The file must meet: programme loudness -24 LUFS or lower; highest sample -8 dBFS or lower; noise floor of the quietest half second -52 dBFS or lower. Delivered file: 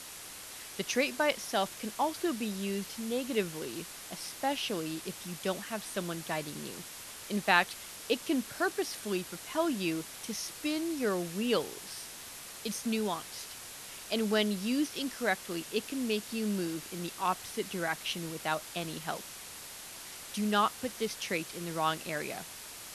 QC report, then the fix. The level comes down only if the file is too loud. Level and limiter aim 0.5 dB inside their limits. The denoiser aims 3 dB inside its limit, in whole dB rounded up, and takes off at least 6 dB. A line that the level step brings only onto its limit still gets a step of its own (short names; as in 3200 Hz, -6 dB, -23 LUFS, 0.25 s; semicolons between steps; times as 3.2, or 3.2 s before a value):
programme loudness -34.0 LUFS: OK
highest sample -9.5 dBFS: OK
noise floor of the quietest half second -46 dBFS: fail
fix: denoiser 9 dB, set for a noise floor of -46 dBFS